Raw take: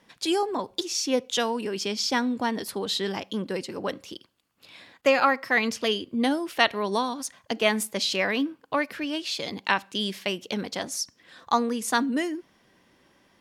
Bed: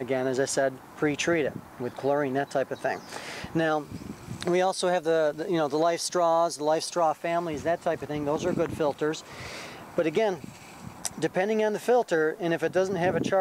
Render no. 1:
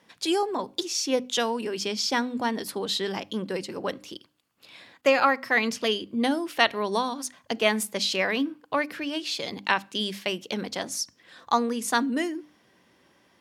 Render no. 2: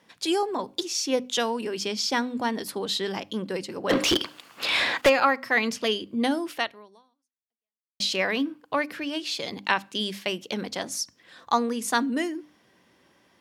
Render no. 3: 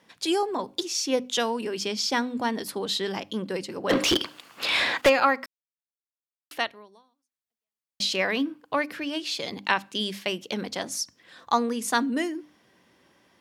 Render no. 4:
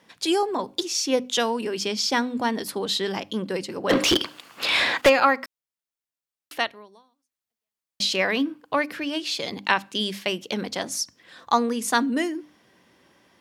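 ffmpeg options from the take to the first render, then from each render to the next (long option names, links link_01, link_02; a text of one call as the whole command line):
ffmpeg -i in.wav -af "highpass=71,bandreject=frequency=50:width_type=h:width=6,bandreject=frequency=100:width_type=h:width=6,bandreject=frequency=150:width_type=h:width=6,bandreject=frequency=200:width_type=h:width=6,bandreject=frequency=250:width_type=h:width=6,bandreject=frequency=300:width_type=h:width=6" out.wav
ffmpeg -i in.wav -filter_complex "[0:a]asplit=3[link_01][link_02][link_03];[link_01]afade=type=out:start_time=3.89:duration=0.02[link_04];[link_02]asplit=2[link_05][link_06];[link_06]highpass=frequency=720:poles=1,volume=36dB,asoftclip=type=tanh:threshold=-9.5dB[link_07];[link_05][link_07]amix=inputs=2:normalize=0,lowpass=frequency=3400:poles=1,volume=-6dB,afade=type=in:start_time=3.89:duration=0.02,afade=type=out:start_time=5.08:duration=0.02[link_08];[link_03]afade=type=in:start_time=5.08:duration=0.02[link_09];[link_04][link_08][link_09]amix=inputs=3:normalize=0,asplit=2[link_10][link_11];[link_10]atrim=end=8,asetpts=PTS-STARTPTS,afade=type=out:start_time=6.52:duration=1.48:curve=exp[link_12];[link_11]atrim=start=8,asetpts=PTS-STARTPTS,afade=type=in:duration=0.004:curve=hsin[link_13];[link_12][link_13]concat=n=2:v=0:a=1" out.wav
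ffmpeg -i in.wav -filter_complex "[0:a]asplit=3[link_01][link_02][link_03];[link_01]atrim=end=5.46,asetpts=PTS-STARTPTS,afade=type=out:start_time=5.456:duration=0.004:curve=hsin[link_04];[link_02]atrim=start=5.46:end=6.51,asetpts=PTS-STARTPTS,volume=0[link_05];[link_03]atrim=start=6.51,asetpts=PTS-STARTPTS,afade=type=in:duration=0.004:curve=hsin[link_06];[link_04][link_05][link_06]concat=n=3:v=0:a=1" out.wav
ffmpeg -i in.wav -af "volume=2.5dB" out.wav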